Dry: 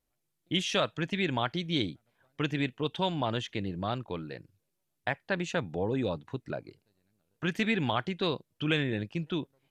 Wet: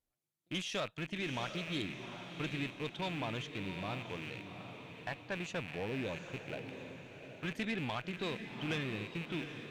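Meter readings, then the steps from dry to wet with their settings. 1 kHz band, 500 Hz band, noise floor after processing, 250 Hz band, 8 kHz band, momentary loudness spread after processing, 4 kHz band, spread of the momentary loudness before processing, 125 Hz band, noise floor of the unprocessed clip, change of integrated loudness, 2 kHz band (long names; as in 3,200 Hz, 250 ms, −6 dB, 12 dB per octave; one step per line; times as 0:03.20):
−8.5 dB, −8.5 dB, −78 dBFS, −8.0 dB, −5.5 dB, 8 LU, −8.0 dB, 10 LU, −7.5 dB, −81 dBFS, −8.0 dB, −5.5 dB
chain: loose part that buzzes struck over −44 dBFS, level −26 dBFS
tube saturation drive 21 dB, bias 0.25
on a send: feedback delay with all-pass diffusion 761 ms, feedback 44%, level −8 dB
on the sum: level −7 dB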